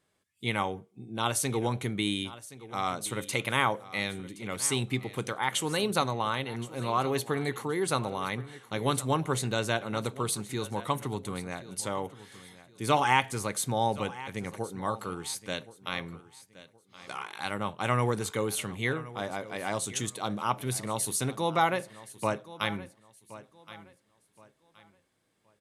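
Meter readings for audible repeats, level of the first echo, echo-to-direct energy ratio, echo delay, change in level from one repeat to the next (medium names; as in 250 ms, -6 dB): 2, -17.0 dB, -16.5 dB, 1071 ms, -11.0 dB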